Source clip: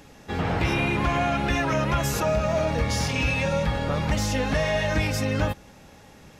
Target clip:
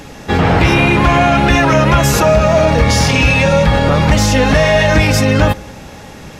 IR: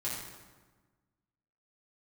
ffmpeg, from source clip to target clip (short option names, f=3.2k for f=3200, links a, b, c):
-filter_complex "[0:a]asplit=2[a][b];[1:a]atrim=start_sample=2205,adelay=6[c];[b][c]afir=irnorm=-1:irlink=0,volume=-27dB[d];[a][d]amix=inputs=2:normalize=0,asoftclip=type=hard:threshold=-16dB,highshelf=f=11k:g=-4,alimiter=level_in=18dB:limit=-1dB:release=50:level=0:latency=1,volume=-2dB"